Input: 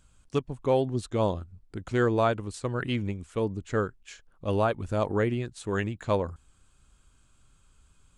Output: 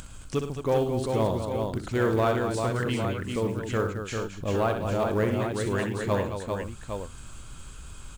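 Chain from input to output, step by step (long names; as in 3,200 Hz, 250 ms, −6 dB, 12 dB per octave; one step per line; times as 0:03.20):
upward compression, threshold −28 dBFS
on a send: multi-tap delay 63/106/218/394/439/806 ms −8/−14/−9.5/−5.5/−19/−8.5 dB
on the sum: soft clipping −14 dBFS, distortion −22 dB
floating-point word with a short mantissa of 4 bits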